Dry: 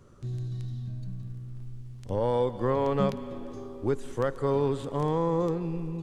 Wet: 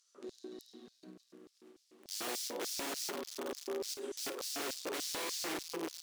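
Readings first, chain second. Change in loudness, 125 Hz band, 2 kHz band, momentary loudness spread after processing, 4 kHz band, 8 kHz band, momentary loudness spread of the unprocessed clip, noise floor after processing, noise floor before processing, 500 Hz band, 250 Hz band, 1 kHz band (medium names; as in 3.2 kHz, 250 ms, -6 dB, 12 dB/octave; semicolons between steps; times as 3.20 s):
-9.0 dB, -34.0 dB, +1.0 dB, 19 LU, +8.5 dB, no reading, 14 LU, -74 dBFS, -43 dBFS, -14.5 dB, -14.5 dB, -12.5 dB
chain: tone controls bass -9 dB, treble -4 dB; in parallel at -1 dB: compression 8:1, threshold -37 dBFS, peak gain reduction 14.5 dB; on the sum: Chebyshev shaper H 4 -11 dB, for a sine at -13.5 dBFS; brick-wall FIR high-pass 160 Hz; integer overflow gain 30 dB; on a send: flutter echo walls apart 9.2 m, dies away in 0.28 s; on the sum: LFO high-pass square 3.4 Hz 340–5000 Hz; trim -5.5 dB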